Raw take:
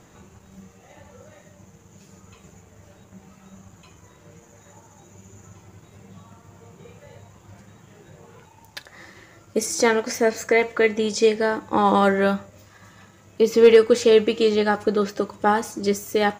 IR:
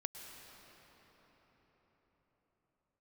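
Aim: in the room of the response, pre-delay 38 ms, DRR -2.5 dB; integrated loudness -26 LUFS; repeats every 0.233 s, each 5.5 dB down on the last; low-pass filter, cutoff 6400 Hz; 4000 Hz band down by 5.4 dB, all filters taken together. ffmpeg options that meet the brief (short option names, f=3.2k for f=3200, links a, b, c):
-filter_complex "[0:a]lowpass=6.4k,equalizer=f=4k:t=o:g=-7,aecho=1:1:233|466|699|932|1165|1398|1631:0.531|0.281|0.149|0.079|0.0419|0.0222|0.0118,asplit=2[a][b];[1:a]atrim=start_sample=2205,adelay=38[c];[b][c]afir=irnorm=-1:irlink=0,volume=4dB[d];[a][d]amix=inputs=2:normalize=0,volume=-11dB"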